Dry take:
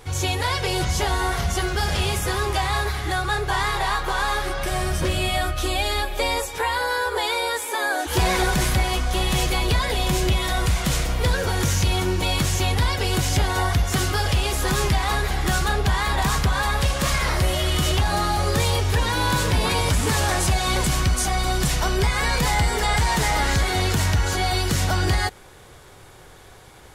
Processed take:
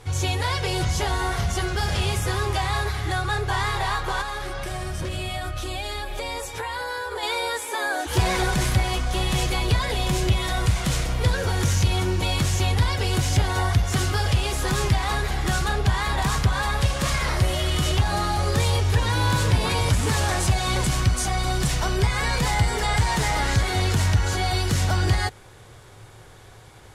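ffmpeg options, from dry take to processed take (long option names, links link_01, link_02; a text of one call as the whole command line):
ffmpeg -i in.wav -filter_complex "[0:a]asettb=1/sr,asplit=3[link_01][link_02][link_03];[link_01]atrim=end=4.214[link_04];[link_02]atrim=start=4.21:end=7.23,asetpts=PTS-STARTPTS,afade=type=in:duration=0.004:curve=qsin,afade=type=out:start_time=3.016:duration=0.004:curve=qsin,acompressor=threshold=-24dB:ratio=6:attack=3.2:release=140:knee=1:detection=peak[link_05];[link_03]atrim=start=7.226[link_06];[link_04][link_05]acrossfade=duration=0.004:curve1=hsin:curve2=qsin[link_07];[link_07][link_06]acrossfade=duration=0.004:curve1=qsin:curve2=hsin,lowpass=12000,acontrast=67,equalizer=frequency=110:width_type=o:width=0.36:gain=10,volume=-8.5dB" out.wav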